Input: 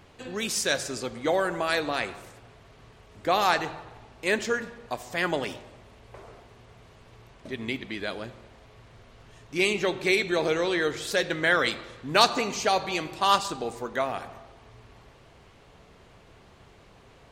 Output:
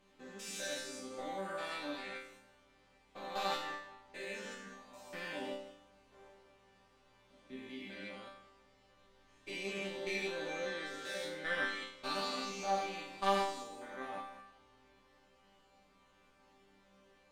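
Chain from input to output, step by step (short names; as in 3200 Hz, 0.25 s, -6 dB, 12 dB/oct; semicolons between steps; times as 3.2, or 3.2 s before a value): stepped spectrum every 0.2 s; added harmonics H 2 -8 dB, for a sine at -11 dBFS; resonator bank G3 sus4, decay 0.62 s; gain +9.5 dB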